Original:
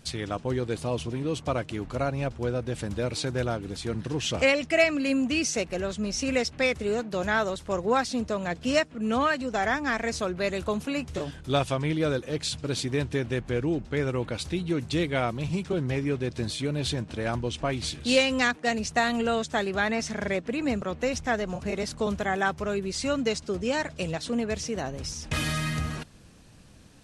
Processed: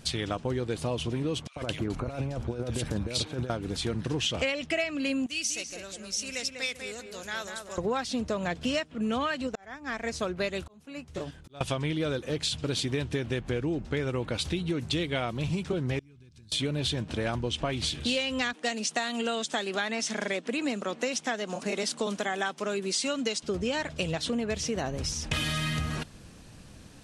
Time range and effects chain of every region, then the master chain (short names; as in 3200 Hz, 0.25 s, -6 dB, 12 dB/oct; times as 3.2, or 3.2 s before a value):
1.47–3.5 negative-ratio compressor -32 dBFS, ratio -0.5 + bands offset in time highs, lows 90 ms, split 1900 Hz
5.26–7.78 pre-emphasis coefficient 0.9 + darkening echo 0.196 s, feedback 38%, low-pass 2100 Hz, level -4.5 dB
9.47–11.61 auto swell 0.737 s + upward expander, over -43 dBFS
15.99–16.52 passive tone stack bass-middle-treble 6-0-2 + compressor 10:1, threshold -53 dBFS + notch 1900 Hz, Q 7.3
18.53–23.43 Chebyshev band-pass 210–10000 Hz, order 3 + tone controls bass -2 dB, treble +7 dB
whole clip: dynamic EQ 3200 Hz, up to +7 dB, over -47 dBFS, Q 2.5; compressor 6:1, threshold -30 dBFS; gain +3.5 dB